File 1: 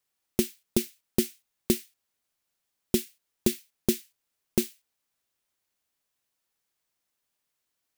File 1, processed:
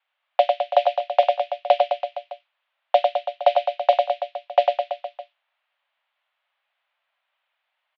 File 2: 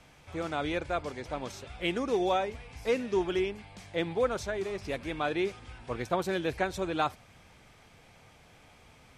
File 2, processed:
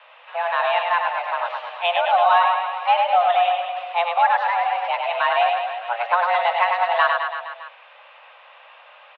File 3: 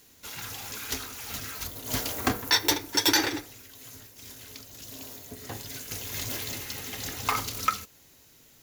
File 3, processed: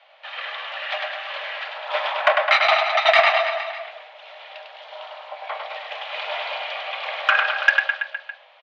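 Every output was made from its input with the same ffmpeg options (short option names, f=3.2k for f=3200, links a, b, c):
-af "aecho=1:1:100|210|331|464.1|610.5:0.631|0.398|0.251|0.158|0.1,highpass=f=210:t=q:w=0.5412,highpass=f=210:t=q:w=1.307,lowpass=f=3k:t=q:w=0.5176,lowpass=f=3k:t=q:w=0.7071,lowpass=f=3k:t=q:w=1.932,afreqshift=350,acontrast=87,volume=3dB"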